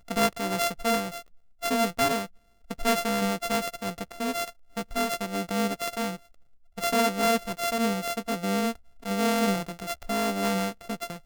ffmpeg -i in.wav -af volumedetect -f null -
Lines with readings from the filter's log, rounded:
mean_volume: -28.6 dB
max_volume: -8.9 dB